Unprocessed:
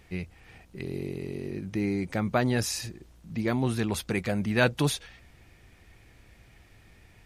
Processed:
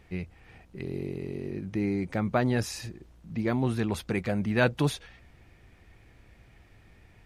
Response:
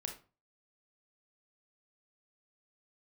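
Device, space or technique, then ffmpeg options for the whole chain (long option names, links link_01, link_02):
behind a face mask: -af "highshelf=frequency=3400:gain=-8"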